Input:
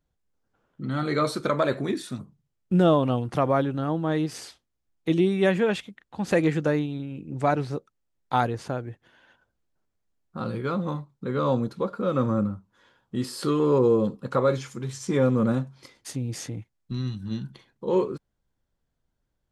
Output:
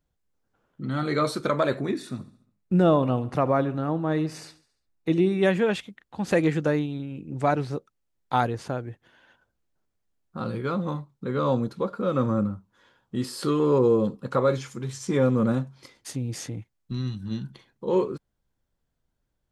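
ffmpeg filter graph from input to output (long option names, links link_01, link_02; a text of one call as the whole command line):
ffmpeg -i in.wav -filter_complex "[0:a]asettb=1/sr,asplit=3[link_01][link_02][link_03];[link_01]atrim=end=1.804[link_04];[link_02]atrim=start=1.8:end=5.43,asetpts=PTS-STARTPTS,afade=type=in:duration=0.004:curve=qsin,afade=type=out:start_time=3.626:duration=0.004:curve=qsin,highshelf=frequency=4600:gain=-5.5,bandreject=frequency=3200:width=7.4,aecho=1:1:70|140|210|280|350:0.112|0.0617|0.0339|0.0187|0.0103,atrim=end_sample=160083[link_05];[link_03]atrim=start=5.426[link_06];[link_04][link_05]acrossfade=duration=0.004:curve1=hsin:curve2=qsin[link_07];[link_07][link_06]acrossfade=duration=0.004:curve1=qsin:curve2=hsin" out.wav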